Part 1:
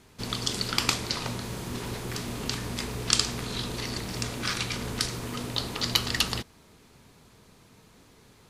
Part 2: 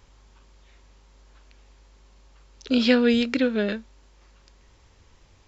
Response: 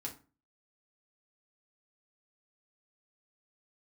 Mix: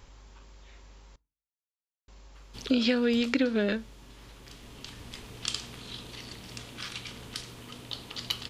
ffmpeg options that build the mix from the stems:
-filter_complex "[0:a]equalizer=f=3100:w=2.2:g=7.5,adelay=2350,volume=0.237,asplit=2[s0][s1];[s1]volume=0.2[s2];[1:a]acompressor=threshold=0.0562:ratio=6,volume=1.26,asplit=3[s3][s4][s5];[s3]atrim=end=1.16,asetpts=PTS-STARTPTS,afade=t=out:st=1.156:d=0.004:c=hsin[s6];[s4]atrim=start=1.16:end=2.08,asetpts=PTS-STARTPTS,volume=0[s7];[s5]atrim=start=2.08,asetpts=PTS-STARTPTS,afade=t=in:d=0.004:c=hsin[s8];[s6][s7][s8]concat=n=3:v=0:a=1,asplit=3[s9][s10][s11];[s10]volume=0.141[s12];[s11]apad=whole_len=478479[s13];[s0][s13]sidechaincompress=threshold=0.0112:ratio=4:attack=8:release=1420[s14];[2:a]atrim=start_sample=2205[s15];[s2][s12]amix=inputs=2:normalize=0[s16];[s16][s15]afir=irnorm=-1:irlink=0[s17];[s14][s9][s17]amix=inputs=3:normalize=0"

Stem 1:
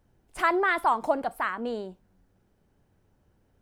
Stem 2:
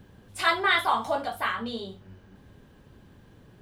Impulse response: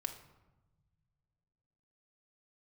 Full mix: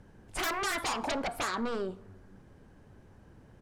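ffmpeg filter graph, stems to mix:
-filter_complex "[0:a]lowpass=10000,aeval=exprs='0.266*sin(PI/2*7.94*val(0)/0.266)':c=same,volume=0.15,asplit=2[s0][s1];[s1]volume=0.355[s2];[1:a]lowpass=f=2200:w=0.5412,lowpass=f=2200:w=1.3066,adelay=0.8,volume=0.562[s3];[2:a]atrim=start_sample=2205[s4];[s2][s4]afir=irnorm=-1:irlink=0[s5];[s0][s3][s5]amix=inputs=3:normalize=0,acompressor=threshold=0.0282:ratio=3"

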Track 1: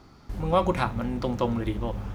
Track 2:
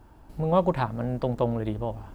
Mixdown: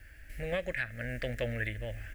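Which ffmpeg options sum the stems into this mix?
-filter_complex "[0:a]volume=0.112[s0];[1:a]equalizer=f=125:t=o:w=1:g=-8,equalizer=f=250:t=o:w=1:g=3,equalizer=f=500:t=o:w=1:g=7,equalizer=f=1000:t=o:w=1:g=-4,equalizer=f=2000:t=o:w=1:g=9,equalizer=f=4000:t=o:w=1:g=-10,adelay=1.1,volume=1.33[s1];[s0][s1]amix=inputs=2:normalize=0,firequalizer=gain_entry='entry(110,0);entry(160,-15);entry(400,-21);entry(600,-13);entry(960,-28);entry(1700,10);entry(3500,5)':delay=0.05:min_phase=1,alimiter=limit=0.0794:level=0:latency=1:release=313"

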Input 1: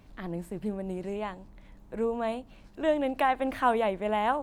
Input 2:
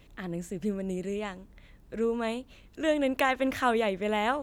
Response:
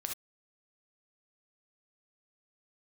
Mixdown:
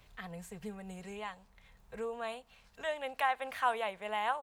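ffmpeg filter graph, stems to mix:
-filter_complex "[0:a]highpass=f=1100:p=1,volume=0.891,asplit=2[s0][s1];[1:a]adelay=3.7,volume=0.562[s2];[s1]apad=whole_len=195101[s3];[s2][s3]sidechaincompress=threshold=0.00631:ratio=8:attack=35:release=840[s4];[s0][s4]amix=inputs=2:normalize=0,equalizer=f=280:t=o:w=0.99:g=-12"

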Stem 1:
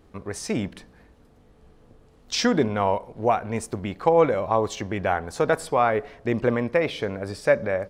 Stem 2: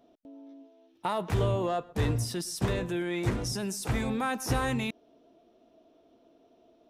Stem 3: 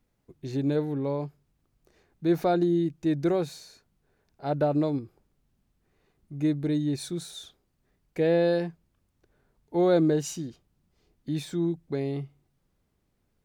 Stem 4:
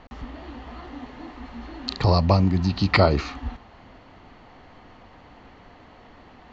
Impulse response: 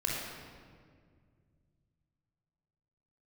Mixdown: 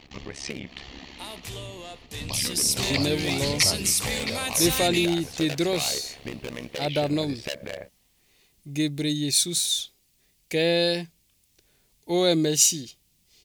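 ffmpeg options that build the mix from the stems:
-filter_complex "[0:a]lowpass=2100,asoftclip=type=hard:threshold=0.106,volume=1.41[s0];[1:a]adelay=150,volume=0.562,afade=t=in:st=2.25:d=0.41:silence=0.421697,asplit=2[s1][s2];[s2]volume=0.0668[s3];[2:a]adelay=2350,volume=0.944[s4];[3:a]volume=0.596,asplit=3[s5][s6][s7];[s5]atrim=end=1.4,asetpts=PTS-STARTPTS,afade=t=out:st=1.396:d=0.004:c=hsin[s8];[s6]atrim=start=1.4:end=2.21,asetpts=PTS-STARTPTS,volume=0[s9];[s7]atrim=start=2.21,asetpts=PTS-STARTPTS,afade=t=in:d=0.004:c=hsin[s10];[s8][s9][s10]concat=n=3:v=0:a=1,asplit=2[s11][s12];[s12]volume=0.266[s13];[s0][s11]amix=inputs=2:normalize=0,tremolo=f=69:d=0.974,acompressor=threshold=0.02:ratio=5,volume=1[s14];[s3][s13]amix=inputs=2:normalize=0,aecho=0:1:665|1330|1995|2660|3325|3990:1|0.41|0.168|0.0689|0.0283|0.0116[s15];[s1][s4][s14][s15]amix=inputs=4:normalize=0,aexciter=amount=8.1:drive=2.8:freq=2100"

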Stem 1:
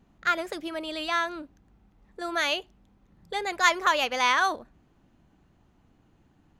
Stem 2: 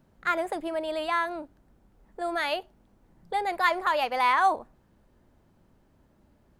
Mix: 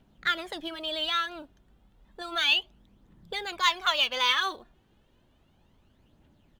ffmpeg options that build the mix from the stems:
-filter_complex "[0:a]equalizer=f=3300:t=o:w=0.95:g=14.5,acrusher=bits=8:mode=log:mix=0:aa=0.000001,aphaser=in_gain=1:out_gain=1:delay=2.9:decay=0.62:speed=0.32:type=triangular,volume=0.335[s0];[1:a]acompressor=threshold=0.0251:ratio=6,adelay=0.8,volume=0.668[s1];[s0][s1]amix=inputs=2:normalize=0"

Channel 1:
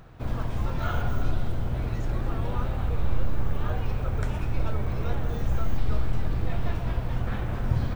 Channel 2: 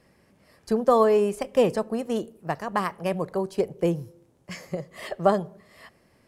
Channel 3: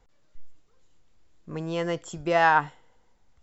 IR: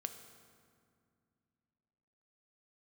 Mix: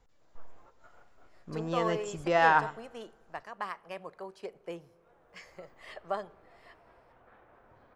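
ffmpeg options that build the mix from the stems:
-filter_complex "[0:a]acrossover=split=360 2100:gain=0.0631 1 0.178[s0][s1][s2];[s0][s1][s2]amix=inputs=3:normalize=0,volume=0.376,afade=t=in:st=4.95:d=0.72:silence=0.266073[s3];[1:a]bandpass=f=2000:t=q:w=0.52:csg=0,adelay=850,volume=0.335,asplit=2[s4][s5];[s5]volume=0.158[s6];[2:a]volume=0.631,asplit=4[s7][s8][s9][s10];[s8]volume=0.119[s11];[s9]volume=0.168[s12];[s10]apad=whole_len=350788[s13];[s3][s13]sidechaingate=range=0.282:threshold=0.00112:ratio=16:detection=peak[s14];[3:a]atrim=start_sample=2205[s15];[s6][s11]amix=inputs=2:normalize=0[s16];[s16][s15]afir=irnorm=-1:irlink=0[s17];[s12]aecho=0:1:110:1[s18];[s14][s4][s7][s17][s18]amix=inputs=5:normalize=0"

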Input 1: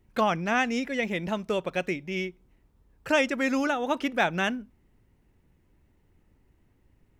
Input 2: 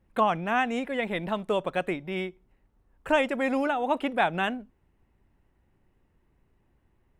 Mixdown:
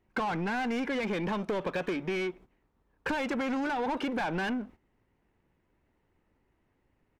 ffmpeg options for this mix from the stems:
-filter_complex "[0:a]alimiter=limit=0.0944:level=0:latency=1,lowshelf=f=79:g=10.5,volume=0.531[s0];[1:a]lowshelf=f=210:g=8.5,aeval=exprs='sgn(val(0))*max(abs(val(0))-0.00178,0)':c=same,volume=-1,adelay=2,volume=0.501[s1];[s0][s1]amix=inputs=2:normalize=0,agate=range=0.251:threshold=0.00282:ratio=16:detection=peak,asplit=2[s2][s3];[s3]highpass=f=720:p=1,volume=17.8,asoftclip=type=tanh:threshold=0.15[s4];[s2][s4]amix=inputs=2:normalize=0,lowpass=f=1600:p=1,volume=0.501,acompressor=threshold=0.0355:ratio=6"

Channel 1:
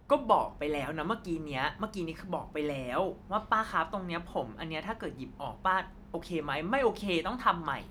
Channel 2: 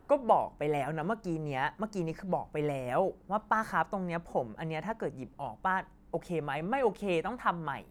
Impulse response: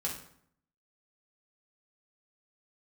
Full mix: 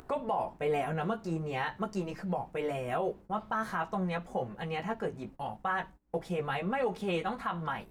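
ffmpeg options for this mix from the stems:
-filter_complex "[0:a]highshelf=f=9300:g=-9,volume=0.562[s0];[1:a]acompressor=mode=upward:threshold=0.00224:ratio=2.5,flanger=delay=15.5:depth=3.5:speed=0.46,volume=1.33,asplit=2[s1][s2];[s2]apad=whole_len=348451[s3];[s0][s3]sidechaingate=range=0.0224:threshold=0.00708:ratio=16:detection=peak[s4];[s4][s1]amix=inputs=2:normalize=0,agate=range=0.0794:threshold=0.00398:ratio=16:detection=peak,acompressor=mode=upward:threshold=0.0178:ratio=2.5,alimiter=limit=0.075:level=0:latency=1:release=61"

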